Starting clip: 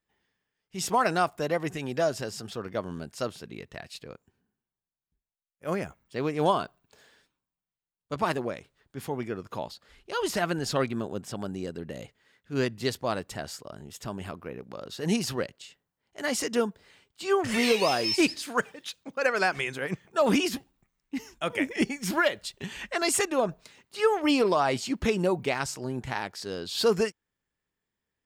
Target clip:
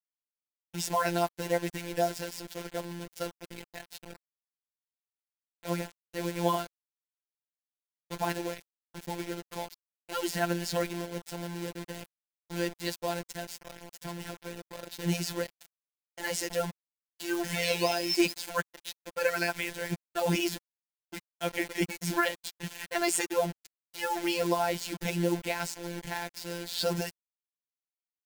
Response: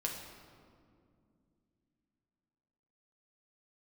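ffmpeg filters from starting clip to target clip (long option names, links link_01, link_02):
-af "acrusher=bits=5:mix=0:aa=0.000001,afftfilt=real='hypot(re,im)*cos(PI*b)':imag='0':win_size=1024:overlap=0.75,bandreject=frequency=1200:width=7.8"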